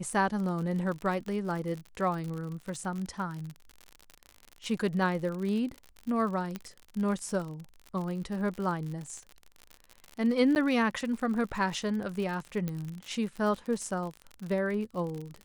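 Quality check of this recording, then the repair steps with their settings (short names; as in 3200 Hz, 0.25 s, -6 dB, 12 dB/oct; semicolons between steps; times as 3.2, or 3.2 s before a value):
crackle 58/s -35 dBFS
6.56 pop -21 dBFS
10.55–10.56 gap 9.9 ms
12.68 pop -20 dBFS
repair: de-click; interpolate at 10.55, 9.9 ms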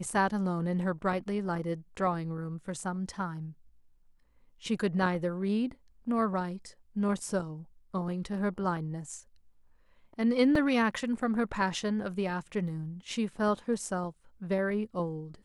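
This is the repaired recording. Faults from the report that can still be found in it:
12.68 pop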